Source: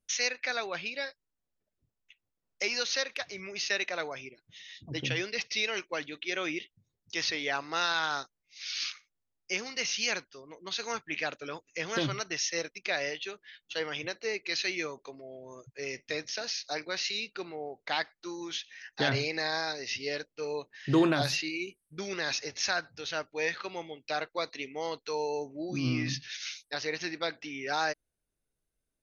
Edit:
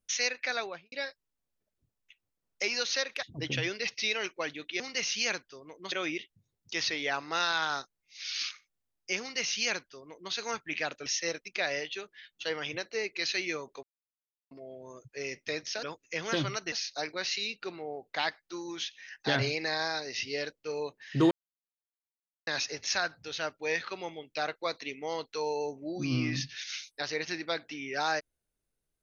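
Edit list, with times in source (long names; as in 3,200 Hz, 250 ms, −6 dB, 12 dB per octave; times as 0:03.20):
0:00.59–0:00.92: fade out and dull
0:03.23–0:04.76: remove
0:09.62–0:10.74: duplicate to 0:06.33
0:11.47–0:12.36: move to 0:16.45
0:15.13: splice in silence 0.68 s
0:21.04–0:22.20: silence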